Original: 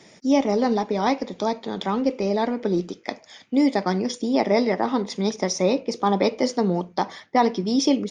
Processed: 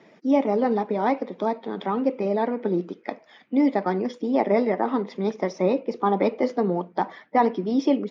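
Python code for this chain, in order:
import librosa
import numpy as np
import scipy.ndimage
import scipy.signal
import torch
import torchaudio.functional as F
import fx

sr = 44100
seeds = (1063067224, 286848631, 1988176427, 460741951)

y = fx.spec_quant(x, sr, step_db=15)
y = fx.bandpass_edges(y, sr, low_hz=190.0, high_hz=2200.0)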